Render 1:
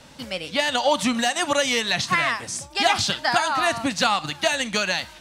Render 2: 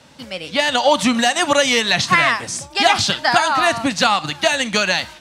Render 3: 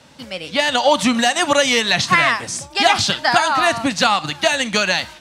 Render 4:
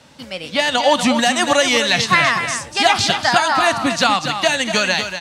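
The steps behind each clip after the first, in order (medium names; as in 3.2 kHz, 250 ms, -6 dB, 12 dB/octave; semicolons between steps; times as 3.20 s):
high-pass 66 Hz; treble shelf 11 kHz -6 dB; level rider
no audible change
delay 242 ms -8.5 dB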